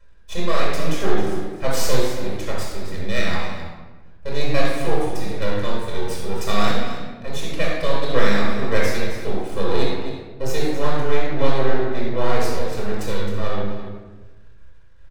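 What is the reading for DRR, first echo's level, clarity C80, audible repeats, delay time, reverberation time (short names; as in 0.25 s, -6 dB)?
-5.5 dB, -11.5 dB, 1.5 dB, 1, 0.264 s, 1.3 s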